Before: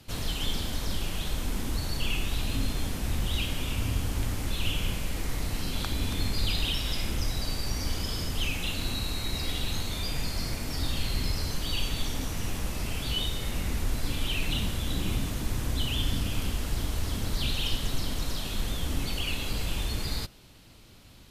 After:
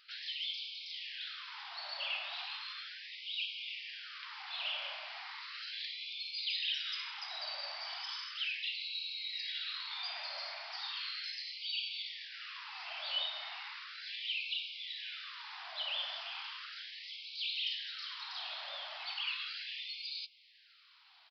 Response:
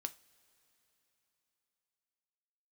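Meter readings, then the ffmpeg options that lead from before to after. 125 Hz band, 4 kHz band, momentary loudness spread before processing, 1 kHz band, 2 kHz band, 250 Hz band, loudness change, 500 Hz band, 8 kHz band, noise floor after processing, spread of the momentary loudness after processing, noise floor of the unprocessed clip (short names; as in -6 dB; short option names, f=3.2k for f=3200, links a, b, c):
under -40 dB, -3.5 dB, 4 LU, -7.0 dB, -3.5 dB, under -40 dB, -7.5 dB, -16.5 dB, under -25 dB, -63 dBFS, 9 LU, -51 dBFS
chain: -filter_complex "[0:a]aresample=11025,aresample=44100,asplit=2[a][b];[1:a]atrim=start_sample=2205[c];[b][c]afir=irnorm=-1:irlink=0,volume=-6dB[d];[a][d]amix=inputs=2:normalize=0,afftfilt=real='re*gte(b*sr/1024,550*pow(2200/550,0.5+0.5*sin(2*PI*0.36*pts/sr)))':imag='im*gte(b*sr/1024,550*pow(2200/550,0.5+0.5*sin(2*PI*0.36*pts/sr)))':win_size=1024:overlap=0.75,volume=-6dB"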